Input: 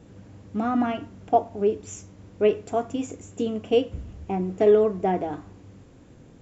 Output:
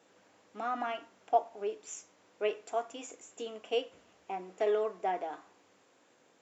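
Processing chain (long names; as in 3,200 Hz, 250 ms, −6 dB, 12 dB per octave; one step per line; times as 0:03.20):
high-pass filter 680 Hz 12 dB per octave
level −4 dB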